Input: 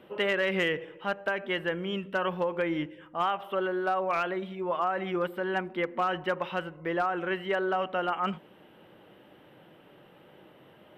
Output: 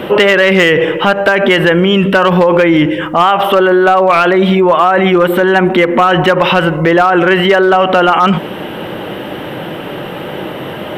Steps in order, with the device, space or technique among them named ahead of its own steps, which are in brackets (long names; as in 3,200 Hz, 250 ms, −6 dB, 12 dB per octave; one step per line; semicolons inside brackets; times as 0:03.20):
loud club master (downward compressor 2.5 to 1, threshold −30 dBFS, peak gain reduction 5 dB; hard clipping −25.5 dBFS, distortion −23 dB; boost into a limiter +33.5 dB)
0:04.58–0:06.29: notch filter 4,900 Hz, Q 5.9
level −1 dB